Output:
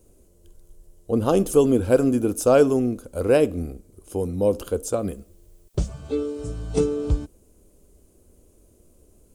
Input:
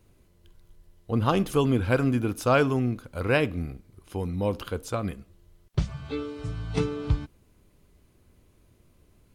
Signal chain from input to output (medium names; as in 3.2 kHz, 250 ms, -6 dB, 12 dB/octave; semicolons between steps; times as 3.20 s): graphic EQ 125/500/1000/2000/4000/8000 Hz -10/+5/-7/-12/-8/+8 dB; 4.98–5.88 s: added noise blue -75 dBFS; trim +6 dB